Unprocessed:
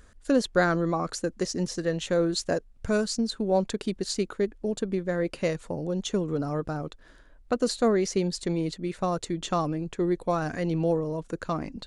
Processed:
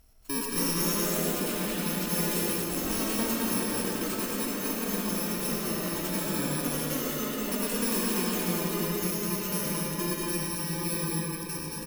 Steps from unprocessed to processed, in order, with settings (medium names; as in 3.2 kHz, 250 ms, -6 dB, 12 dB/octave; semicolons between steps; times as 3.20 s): bit-reversed sample order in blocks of 64 samples; one-sided clip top -26 dBFS; on a send: loudspeakers at several distances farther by 40 m -9 dB, 77 m -3 dB; on the sum: ever faster or slower copies 325 ms, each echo +3 st, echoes 3; algorithmic reverb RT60 2.5 s, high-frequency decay 0.7×, pre-delay 35 ms, DRR -0.5 dB; trim -6.5 dB